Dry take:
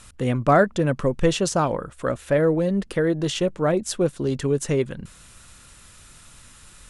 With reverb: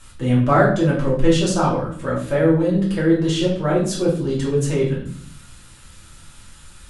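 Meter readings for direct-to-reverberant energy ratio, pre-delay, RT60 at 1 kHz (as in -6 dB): -6.5 dB, 3 ms, 0.50 s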